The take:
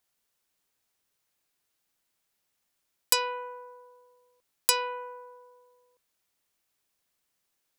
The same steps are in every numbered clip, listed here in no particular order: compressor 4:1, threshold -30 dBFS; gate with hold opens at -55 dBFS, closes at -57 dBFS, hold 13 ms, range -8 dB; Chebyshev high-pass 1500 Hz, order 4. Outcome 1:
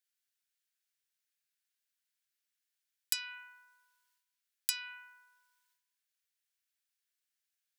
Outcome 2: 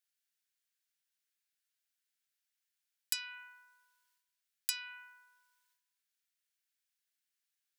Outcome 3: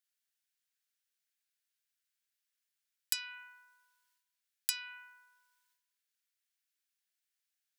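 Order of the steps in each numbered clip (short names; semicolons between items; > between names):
gate with hold > Chebyshev high-pass > compressor; compressor > gate with hold > Chebyshev high-pass; gate with hold > compressor > Chebyshev high-pass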